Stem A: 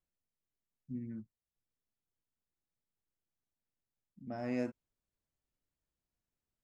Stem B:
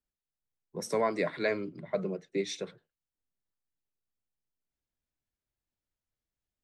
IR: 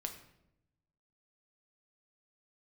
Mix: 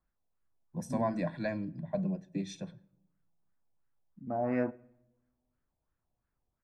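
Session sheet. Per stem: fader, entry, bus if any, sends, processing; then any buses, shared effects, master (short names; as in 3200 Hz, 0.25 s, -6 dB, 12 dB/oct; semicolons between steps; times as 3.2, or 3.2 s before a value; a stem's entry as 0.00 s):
+2.5 dB, 0.00 s, send -10.5 dB, LFO low-pass sine 2.9 Hz 730–1600 Hz
-7.5 dB, 0.00 s, send -11 dB, tilt shelf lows +8.5 dB, about 680 Hz; comb 1.2 ms, depth 98%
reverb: on, RT60 0.85 s, pre-delay 6 ms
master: high shelf 4700 Hz +4 dB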